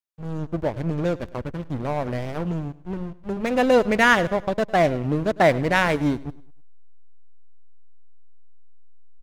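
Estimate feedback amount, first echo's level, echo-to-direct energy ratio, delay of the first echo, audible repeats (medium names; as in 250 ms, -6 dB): 40%, -20.0 dB, -19.5 dB, 103 ms, 2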